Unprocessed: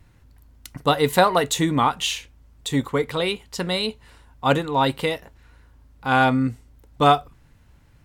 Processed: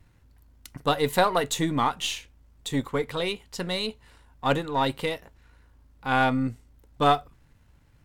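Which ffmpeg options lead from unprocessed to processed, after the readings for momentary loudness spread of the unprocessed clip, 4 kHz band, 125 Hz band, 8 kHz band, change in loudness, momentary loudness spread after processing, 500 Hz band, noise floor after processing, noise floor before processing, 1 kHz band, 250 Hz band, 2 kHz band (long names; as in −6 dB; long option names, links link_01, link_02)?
10 LU, −4.5 dB, −5.5 dB, −5.0 dB, −5.0 dB, 10 LU, −4.5 dB, −60 dBFS, −54 dBFS, −5.0 dB, −5.0 dB, −4.5 dB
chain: -af "aeval=exprs='if(lt(val(0),0),0.708*val(0),val(0))':channel_layout=same,volume=-3.5dB"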